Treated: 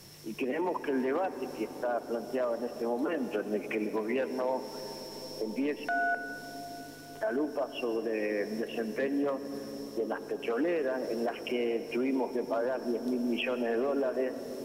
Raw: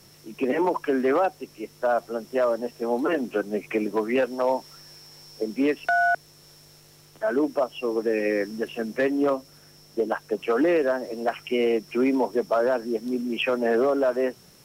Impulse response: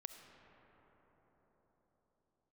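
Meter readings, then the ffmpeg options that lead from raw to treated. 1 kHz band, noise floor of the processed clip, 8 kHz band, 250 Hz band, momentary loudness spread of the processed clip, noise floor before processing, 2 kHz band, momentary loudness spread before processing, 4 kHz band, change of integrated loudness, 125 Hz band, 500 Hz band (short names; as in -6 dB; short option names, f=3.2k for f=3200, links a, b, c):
-8.5 dB, -44 dBFS, n/a, -6.0 dB, 9 LU, -53 dBFS, -7.5 dB, 8 LU, -5.0 dB, -7.5 dB, -5.0 dB, -7.5 dB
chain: -filter_complex "[0:a]bandreject=f=1.3k:w=12,alimiter=level_in=0.5dB:limit=-24dB:level=0:latency=1:release=265,volume=-0.5dB,asplit=2[a][b];[1:a]atrim=start_sample=2205,asetrate=29988,aresample=44100[c];[b][c]afir=irnorm=-1:irlink=0,volume=4dB[d];[a][d]amix=inputs=2:normalize=0,volume=-5dB"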